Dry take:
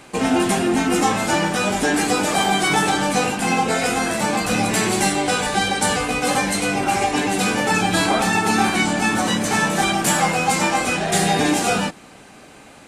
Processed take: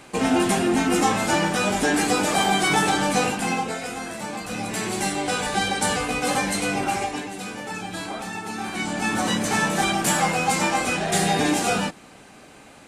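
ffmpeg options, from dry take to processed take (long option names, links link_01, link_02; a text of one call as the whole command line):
ffmpeg -i in.wav -af "volume=16dB,afade=type=out:start_time=3.27:duration=0.53:silence=0.354813,afade=type=in:start_time=4.48:duration=1.11:silence=0.421697,afade=type=out:start_time=6.81:duration=0.49:silence=0.316228,afade=type=in:start_time=8.61:duration=0.66:silence=0.298538" out.wav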